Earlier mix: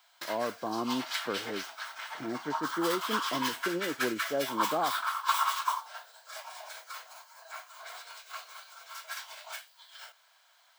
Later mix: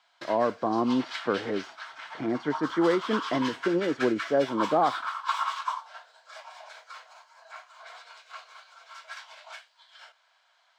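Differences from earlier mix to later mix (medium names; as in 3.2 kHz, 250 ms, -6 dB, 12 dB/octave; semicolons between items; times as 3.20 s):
speech +8.0 dB; master: add distance through air 110 m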